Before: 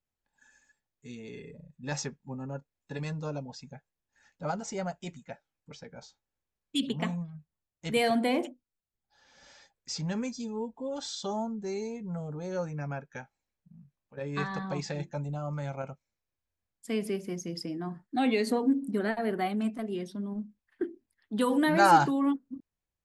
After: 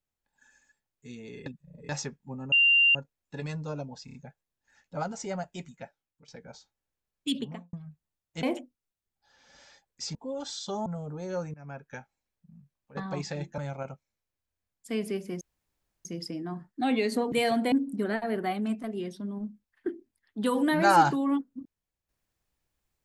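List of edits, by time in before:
1.46–1.89 reverse
2.52 add tone 2780 Hz -17.5 dBFS 0.43 s
3.62 stutter 0.03 s, 4 plays
5.29–5.76 fade out, to -14.5 dB
6.78–7.21 studio fade out
7.91–8.31 move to 18.67
10.03–10.71 cut
11.42–12.08 cut
12.76–13.1 fade in, from -22.5 dB
14.19–14.56 cut
15.17–15.57 cut
17.4 insert room tone 0.64 s

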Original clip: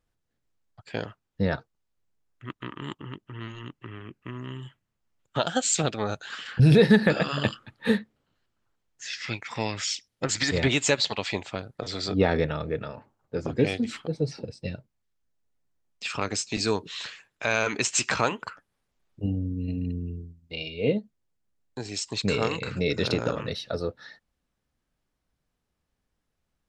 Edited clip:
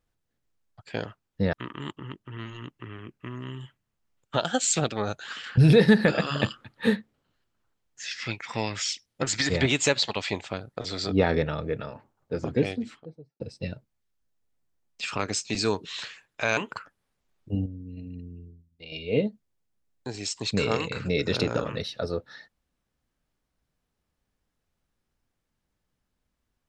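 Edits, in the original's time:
1.53–2.55 cut
13.41–14.42 studio fade out
17.59–18.28 cut
19.37–20.63 gain -9.5 dB

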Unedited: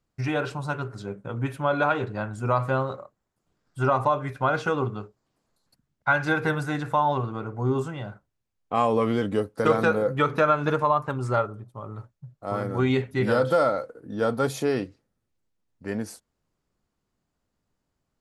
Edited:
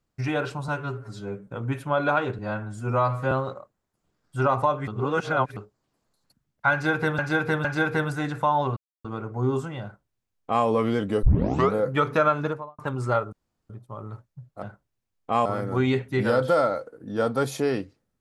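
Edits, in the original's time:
0.68–1.21 stretch 1.5×
2.12–2.74 stretch 1.5×
4.3–4.99 reverse
6.15–6.61 loop, 3 plays
7.27 insert silence 0.28 s
8.05–8.88 copy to 12.48
9.45 tape start 0.51 s
10.53–11.01 studio fade out
11.55 insert room tone 0.37 s

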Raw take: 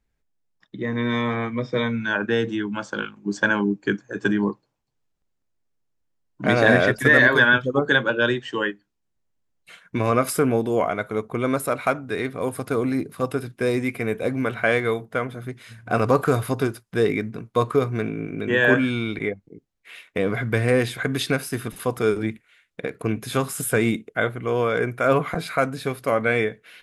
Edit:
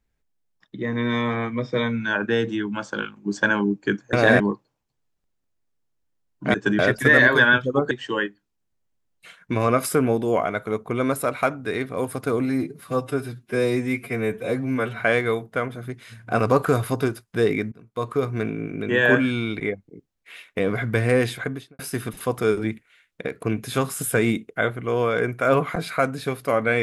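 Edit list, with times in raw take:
4.13–4.38 swap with 6.52–6.79
7.91–8.35 cut
12.89–14.59 stretch 1.5×
17.31–18.02 fade in, from -19.5 dB
20.89–21.38 studio fade out

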